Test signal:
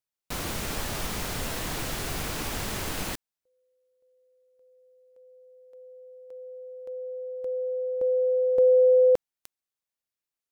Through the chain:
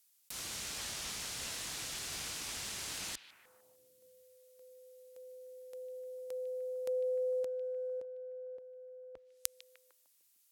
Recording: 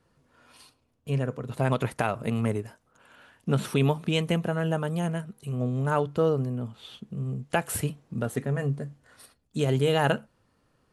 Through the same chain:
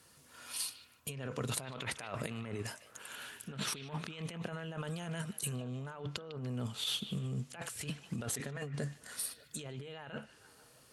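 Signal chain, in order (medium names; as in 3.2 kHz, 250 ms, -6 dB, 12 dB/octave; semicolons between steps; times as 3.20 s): low-pass that closes with the level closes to 2.3 kHz, closed at -20.5 dBFS; high-pass 45 Hz; pre-emphasis filter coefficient 0.9; compressor with a negative ratio -53 dBFS, ratio -1; repeats whose band climbs or falls 151 ms, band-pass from 2.9 kHz, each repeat -0.7 oct, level -11 dB; trim +12 dB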